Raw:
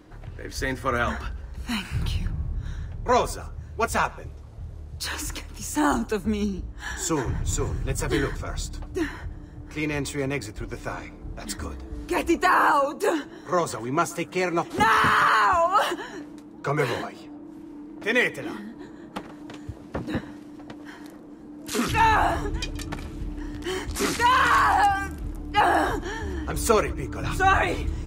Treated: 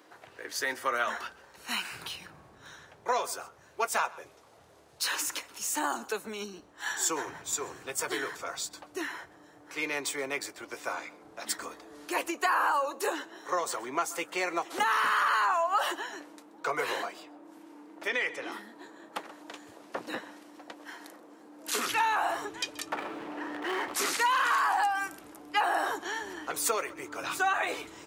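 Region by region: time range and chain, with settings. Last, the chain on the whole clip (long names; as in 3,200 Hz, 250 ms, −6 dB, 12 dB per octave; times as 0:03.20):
0:18.07–0:18.52: low-pass filter 6,300 Hz + downward compressor 4 to 1, threshold −24 dBFS
0:22.92–0:23.94: running median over 9 samples + mid-hump overdrive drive 23 dB, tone 1,000 Hz, clips at −16.5 dBFS + one half of a high-frequency compander encoder only
whole clip: downward compressor 6 to 1, threshold −23 dBFS; high-pass filter 540 Hz 12 dB per octave; high-shelf EQ 10,000 Hz +4 dB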